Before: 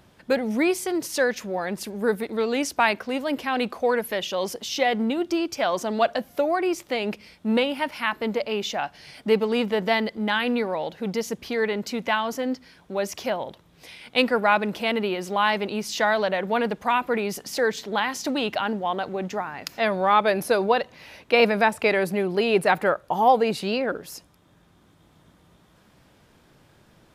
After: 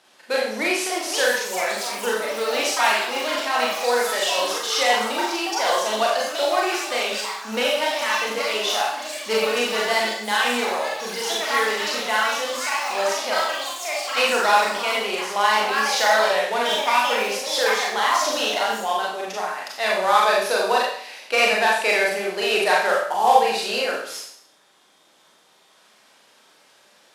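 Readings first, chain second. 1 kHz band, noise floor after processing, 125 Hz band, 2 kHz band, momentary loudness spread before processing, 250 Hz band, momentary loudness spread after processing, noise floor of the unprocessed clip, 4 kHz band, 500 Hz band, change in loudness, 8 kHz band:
+4.5 dB, -56 dBFS, under -10 dB, +5.5 dB, 9 LU, -7.5 dB, 8 LU, -58 dBFS, +8.0 dB, +1.0 dB, +3.5 dB, +9.5 dB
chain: CVSD 64 kbps; HPF 530 Hz 12 dB/oct; bell 4500 Hz +5 dB 1.6 oct; echoes that change speed 0.677 s, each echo +5 st, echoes 3, each echo -6 dB; Schroeder reverb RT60 0.62 s, combs from 29 ms, DRR -3.5 dB; gain -1 dB

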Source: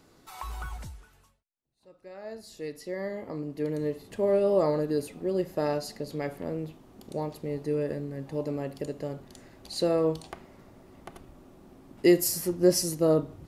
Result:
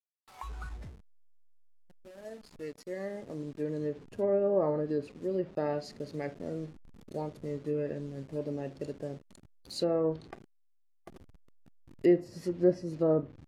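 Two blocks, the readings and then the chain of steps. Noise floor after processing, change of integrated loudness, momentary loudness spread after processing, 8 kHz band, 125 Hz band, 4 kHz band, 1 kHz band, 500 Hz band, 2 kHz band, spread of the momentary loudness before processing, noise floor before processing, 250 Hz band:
-66 dBFS, -4.0 dB, 18 LU, under -15 dB, -4.0 dB, -10.0 dB, -5.0 dB, -3.5 dB, -7.0 dB, 19 LU, -62 dBFS, -3.5 dB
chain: level-crossing sampler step -41 dBFS; spectral noise reduction 7 dB; treble ducked by the level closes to 1400 Hz, closed at -21 dBFS; gain -3.5 dB

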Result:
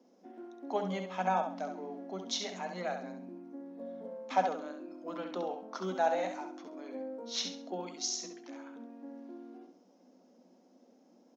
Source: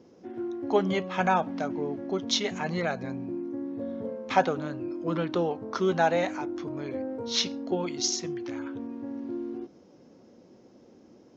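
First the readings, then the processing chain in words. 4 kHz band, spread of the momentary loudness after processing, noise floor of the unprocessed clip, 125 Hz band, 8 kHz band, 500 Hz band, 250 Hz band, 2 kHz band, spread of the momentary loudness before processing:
-8.0 dB, 16 LU, -56 dBFS, -12.5 dB, n/a, -8.0 dB, -11.0 dB, -10.0 dB, 10 LU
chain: rippled Chebyshev high-pass 180 Hz, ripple 9 dB; high shelf 5200 Hz +11 dB; on a send: feedback echo 67 ms, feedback 31%, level -6.5 dB; on the sum: gain -4.5 dB

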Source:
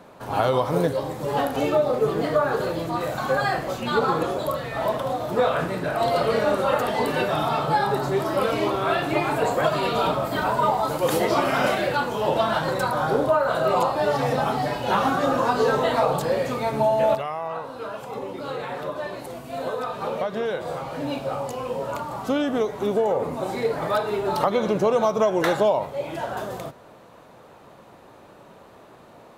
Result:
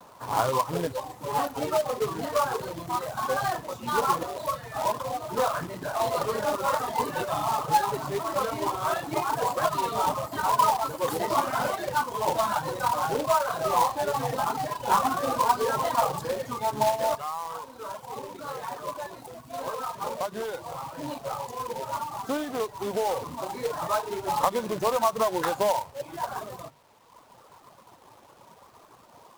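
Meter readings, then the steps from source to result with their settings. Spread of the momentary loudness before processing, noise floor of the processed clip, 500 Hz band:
9 LU, -54 dBFS, -7.0 dB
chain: HPF 41 Hz 24 dB/oct; notches 50/100/150/200 Hz; reverb removal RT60 1.4 s; fifteen-band EQ 100 Hz +6 dB, 1000 Hz +11 dB, 2500 Hz -7 dB; companded quantiser 4-bit; vibrato 0.77 Hz 47 cents; gain -7 dB

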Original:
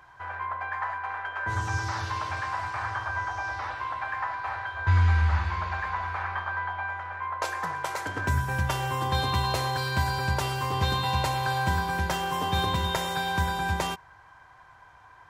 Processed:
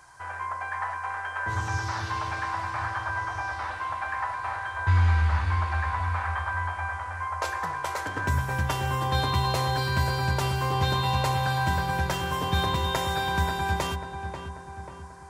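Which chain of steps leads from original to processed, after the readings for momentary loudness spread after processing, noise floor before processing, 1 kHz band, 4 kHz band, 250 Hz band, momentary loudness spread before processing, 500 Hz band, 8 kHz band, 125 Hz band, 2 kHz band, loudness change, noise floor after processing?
8 LU, -53 dBFS, +0.5 dB, 0.0 dB, +1.5 dB, 7 LU, +1.5 dB, +0.5 dB, +1.5 dB, 0.0 dB, +1.0 dB, -40 dBFS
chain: darkening echo 0.539 s, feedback 57%, level -8 dB; band noise 4300–10000 Hz -63 dBFS

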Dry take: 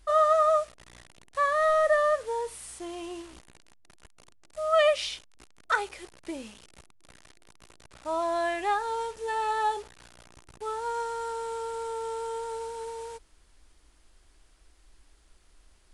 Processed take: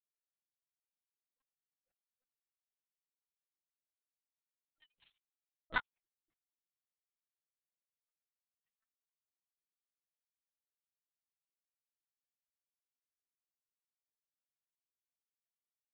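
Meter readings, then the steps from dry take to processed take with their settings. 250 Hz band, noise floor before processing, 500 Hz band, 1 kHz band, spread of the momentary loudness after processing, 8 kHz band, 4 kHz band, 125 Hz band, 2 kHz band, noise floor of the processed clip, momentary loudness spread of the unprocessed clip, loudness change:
-24.0 dB, -61 dBFS, under -40 dB, -26.0 dB, 0 LU, under -35 dB, -20.5 dB, n/a, -14.5 dB, under -85 dBFS, 18 LU, -10.5 dB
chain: median-filter separation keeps percussive; power-law curve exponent 3; bands offset in time lows, highs 30 ms, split 510 Hz; LPC vocoder at 8 kHz pitch kept

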